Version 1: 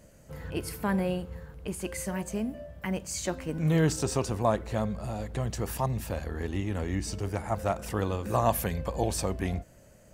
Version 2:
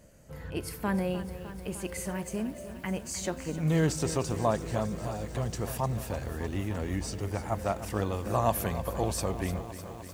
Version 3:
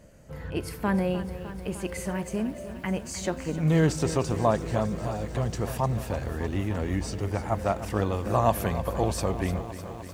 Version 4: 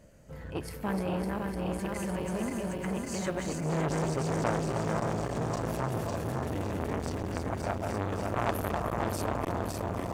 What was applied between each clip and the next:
feedback echo at a low word length 303 ms, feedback 80%, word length 8 bits, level −12.5 dB; level −1.5 dB
high-shelf EQ 5,800 Hz −7.5 dB; level +4 dB
feedback delay that plays each chunk backwards 278 ms, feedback 79%, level −3 dB; saturating transformer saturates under 1,400 Hz; level −3.5 dB

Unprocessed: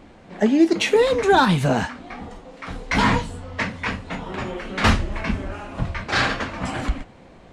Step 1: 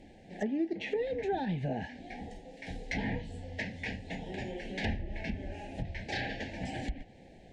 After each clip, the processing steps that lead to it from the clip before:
elliptic band-stop filter 830–1,700 Hz, stop band 50 dB
treble cut that deepens with the level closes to 2,200 Hz, closed at −16.5 dBFS
downward compressor 2 to 1, threshold −29 dBFS, peak gain reduction 10 dB
level −7 dB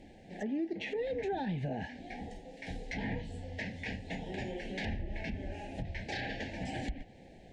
brickwall limiter −28 dBFS, peak gain reduction 7 dB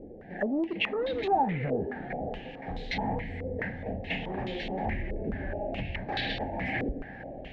soft clipping −30.5 dBFS, distortion −19 dB
feedback delay with all-pass diffusion 558 ms, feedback 41%, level −12 dB
low-pass on a step sequencer 4.7 Hz 460–3,800 Hz
level +5 dB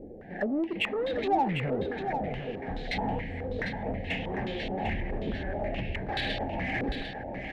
in parallel at −7.5 dB: soft clipping −30 dBFS, distortion −10 dB
on the sum: single-tap delay 749 ms −7.5 dB
level −2 dB

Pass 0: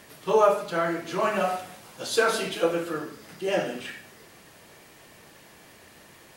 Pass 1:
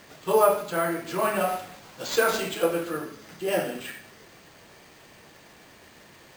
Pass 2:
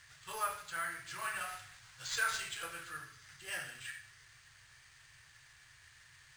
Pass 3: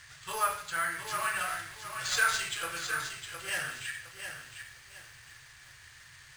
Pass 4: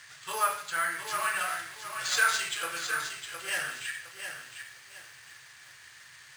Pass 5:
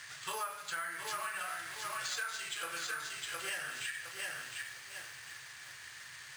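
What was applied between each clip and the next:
decimation without filtering 4×
drawn EQ curve 130 Hz 0 dB, 190 Hz −26 dB, 380 Hz −24 dB, 570 Hz −23 dB, 1,700 Hz +2 dB, 2,400 Hz −3 dB, 9,100 Hz +1 dB, 13,000 Hz −11 dB; level −6 dB
feedback echo at a low word length 712 ms, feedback 35%, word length 10 bits, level −7 dB; level +7 dB
Bessel high-pass filter 230 Hz, order 2; level +2 dB
downward compressor 8 to 1, threshold −38 dBFS, peak gain reduction 18 dB; level +2 dB

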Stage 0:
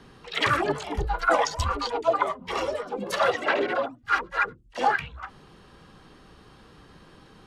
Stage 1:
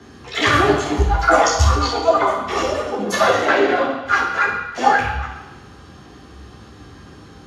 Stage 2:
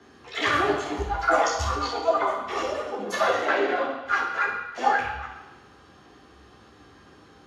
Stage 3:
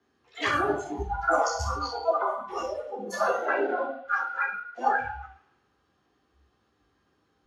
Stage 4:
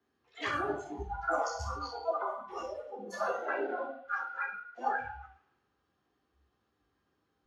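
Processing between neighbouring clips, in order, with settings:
convolution reverb RT60 1.0 s, pre-delay 3 ms, DRR −3 dB; level −1 dB
bass and treble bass −9 dB, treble −4 dB; level −7 dB
noise reduction from a noise print of the clip's start 16 dB; level −2.5 dB
high-shelf EQ 8,900 Hz −7 dB; level −7.5 dB

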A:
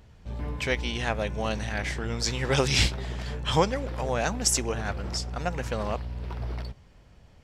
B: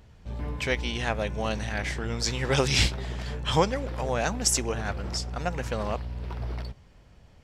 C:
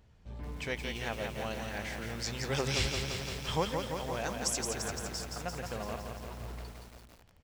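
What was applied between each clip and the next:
no processing that can be heard
slap from a distant wall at 93 metres, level −20 dB; feedback echo at a low word length 171 ms, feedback 80%, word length 7 bits, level −4.5 dB; level −9 dB

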